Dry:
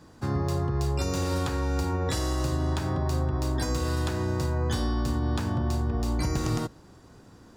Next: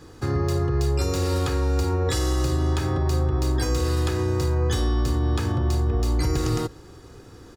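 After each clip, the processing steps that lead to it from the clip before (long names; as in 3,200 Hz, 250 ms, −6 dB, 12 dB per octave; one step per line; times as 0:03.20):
parametric band 840 Hz −8 dB 0.24 octaves
comb filter 2.4 ms, depth 55%
in parallel at +0.5 dB: brickwall limiter −26.5 dBFS, peak gain reduction 10.5 dB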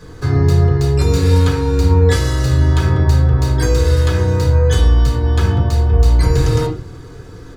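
convolution reverb RT60 0.40 s, pre-delay 4 ms, DRR −2.5 dB
level +2.5 dB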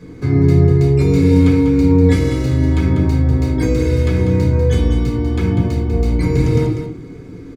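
hollow resonant body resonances 230/2,200 Hz, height 18 dB, ringing for 20 ms
on a send: single-tap delay 195 ms −8.5 dB
on the sum: level −9 dB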